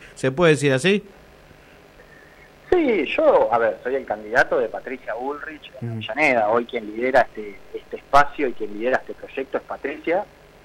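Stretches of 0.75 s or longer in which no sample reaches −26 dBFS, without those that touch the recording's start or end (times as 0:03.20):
0:00.99–0:02.72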